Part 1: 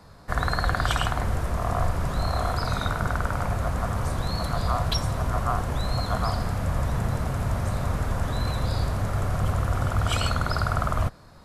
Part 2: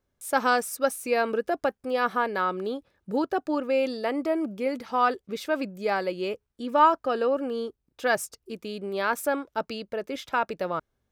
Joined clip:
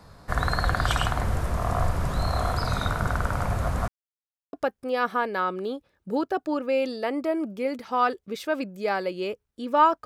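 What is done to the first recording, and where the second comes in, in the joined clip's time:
part 1
3.88–4.53 s: mute
4.53 s: go over to part 2 from 1.54 s

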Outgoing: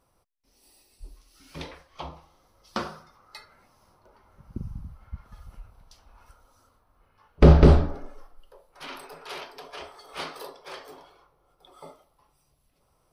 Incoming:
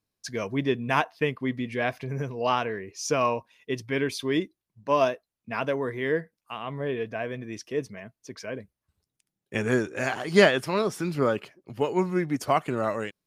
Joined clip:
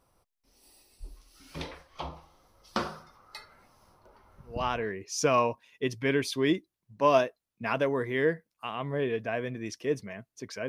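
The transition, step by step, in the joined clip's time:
outgoing
4.65 s: go over to incoming from 2.52 s, crossfade 0.48 s linear

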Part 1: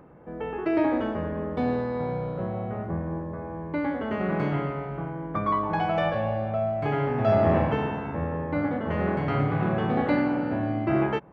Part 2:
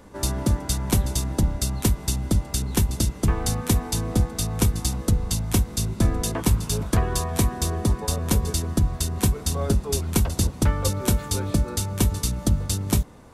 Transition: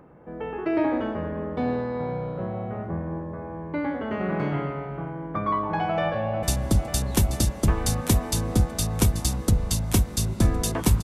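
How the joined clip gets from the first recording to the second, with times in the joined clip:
part 1
5.88–6.43 s: echo throw 450 ms, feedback 80%, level -10 dB
6.43 s: go over to part 2 from 2.03 s

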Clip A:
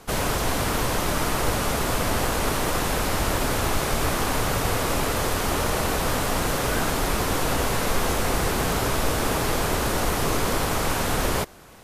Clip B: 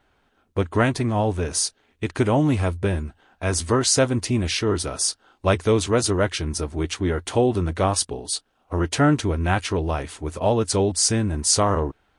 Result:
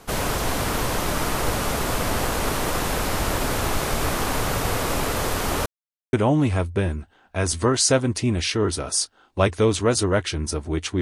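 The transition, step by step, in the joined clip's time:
clip A
5.66–6.13 s: mute
6.13 s: go over to clip B from 2.20 s

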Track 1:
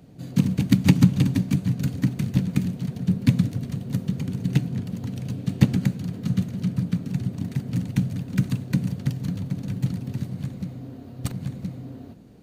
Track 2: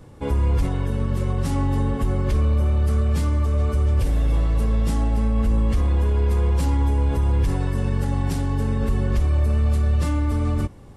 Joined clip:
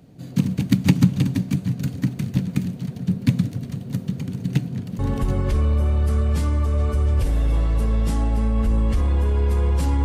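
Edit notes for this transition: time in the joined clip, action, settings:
track 1
5.20 s: go over to track 2 from 2.00 s, crossfade 0.42 s logarithmic

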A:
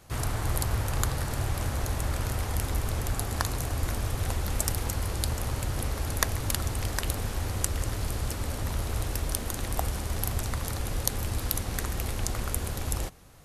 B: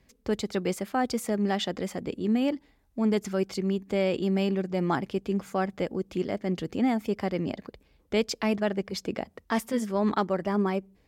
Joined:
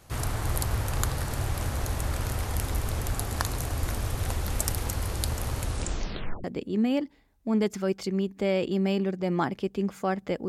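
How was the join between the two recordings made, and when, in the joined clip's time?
A
5.61 s: tape stop 0.83 s
6.44 s: go over to B from 1.95 s

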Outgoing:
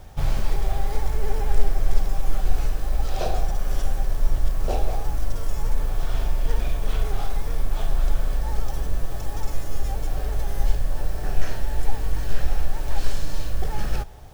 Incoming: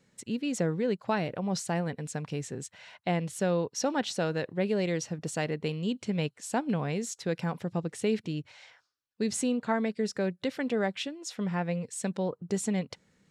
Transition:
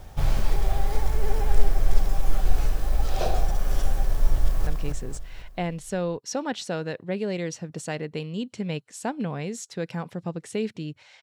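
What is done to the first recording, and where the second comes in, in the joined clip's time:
outgoing
4.38–4.67 s: echo throw 250 ms, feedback 50%, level -5 dB
4.67 s: go over to incoming from 2.16 s

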